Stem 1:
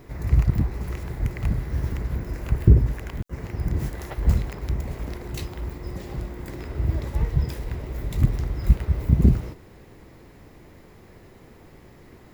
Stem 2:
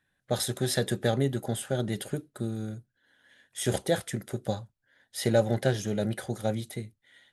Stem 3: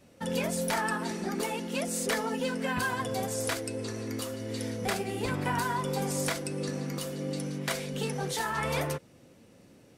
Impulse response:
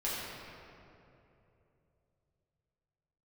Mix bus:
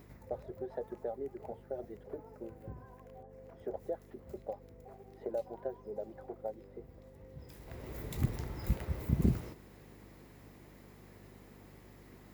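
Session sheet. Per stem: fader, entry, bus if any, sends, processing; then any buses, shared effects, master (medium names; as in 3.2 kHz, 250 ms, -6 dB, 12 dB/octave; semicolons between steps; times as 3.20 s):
-7.5 dB, 0.00 s, no bus, no send, auto duck -21 dB, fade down 0.30 s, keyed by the second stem
-4.0 dB, 0.00 s, bus A, no send, reverb removal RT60 1.6 s
-19.0 dB, 0.00 s, bus A, no send, none
bus A: 0.0 dB, Butterworth band-pass 550 Hz, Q 1.1; compression 2.5:1, threshold -36 dBFS, peak gain reduction 9 dB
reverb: none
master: treble shelf 9.2 kHz +7 dB; hum 50 Hz, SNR 16 dB; high-pass 150 Hz 6 dB/octave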